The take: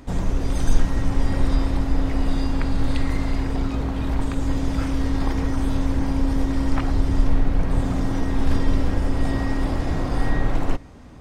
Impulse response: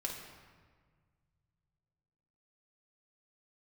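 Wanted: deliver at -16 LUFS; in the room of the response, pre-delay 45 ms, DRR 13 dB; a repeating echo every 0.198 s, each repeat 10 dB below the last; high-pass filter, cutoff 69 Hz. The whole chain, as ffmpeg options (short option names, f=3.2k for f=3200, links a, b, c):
-filter_complex "[0:a]highpass=69,aecho=1:1:198|396|594|792:0.316|0.101|0.0324|0.0104,asplit=2[a][b];[1:a]atrim=start_sample=2205,adelay=45[c];[b][c]afir=irnorm=-1:irlink=0,volume=-14dB[d];[a][d]amix=inputs=2:normalize=0,volume=10dB"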